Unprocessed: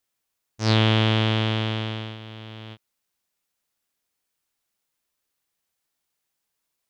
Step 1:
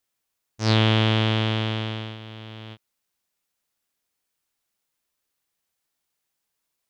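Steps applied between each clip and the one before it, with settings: no audible change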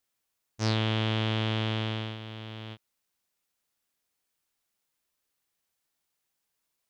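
compression 5:1, threshold -23 dBFS, peak gain reduction 7.5 dB; trim -1.5 dB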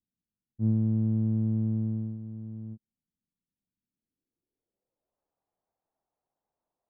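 low-pass sweep 210 Hz -> 750 Hz, 3.89–5.23 s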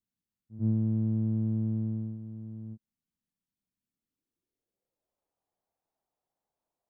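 reverse echo 94 ms -17.5 dB; trim -1.5 dB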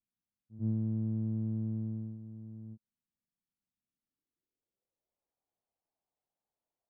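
tape noise reduction on one side only decoder only; trim -5 dB

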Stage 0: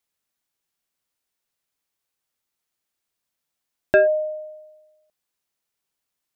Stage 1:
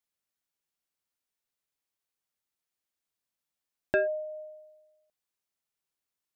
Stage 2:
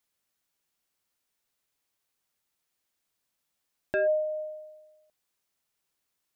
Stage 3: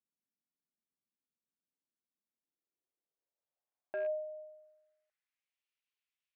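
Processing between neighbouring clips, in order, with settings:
dynamic bell 770 Hz, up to -5 dB, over -29 dBFS, Q 1.1; trim -7.5 dB
peak limiter -27.5 dBFS, peak gain reduction 11.5 dB; trim +7.5 dB
rattle on loud lows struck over -42 dBFS, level -28 dBFS; band-pass sweep 230 Hz -> 2.6 kHz, 2.14–5.59 s; trim -3.5 dB

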